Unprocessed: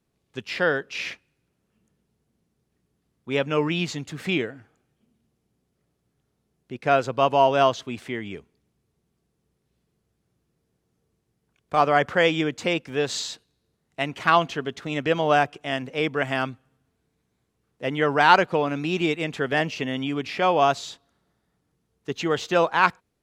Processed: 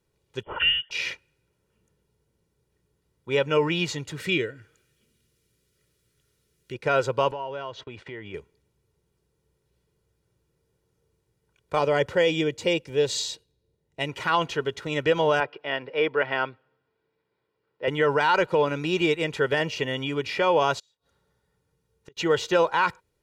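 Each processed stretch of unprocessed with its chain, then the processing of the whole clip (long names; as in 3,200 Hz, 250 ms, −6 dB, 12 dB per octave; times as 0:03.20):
0:00.43–0:00.91: flanger swept by the level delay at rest 9.4 ms, full sweep at −21 dBFS + voice inversion scrambler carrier 3,300 Hz
0:04.20–0:06.74: parametric band 820 Hz −13.5 dB 0.83 octaves + one half of a high-frequency compander encoder only
0:07.31–0:08.34: low-pass filter 3,700 Hz + noise gate −47 dBFS, range −17 dB + downward compressor 3 to 1, threshold −36 dBFS
0:11.79–0:14.09: parametric band 1,300 Hz −9.5 dB 1.1 octaves + one half of a high-frequency compander decoder only
0:15.40–0:17.88: high-pass filter 130 Hz + bass and treble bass −8 dB, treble −13 dB + bad sample-rate conversion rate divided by 4×, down none, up filtered
0:20.79–0:22.17: notch comb filter 330 Hz + gate with flip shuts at −31 dBFS, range −32 dB
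whole clip: comb filter 2.1 ms, depth 60%; brickwall limiter −11.5 dBFS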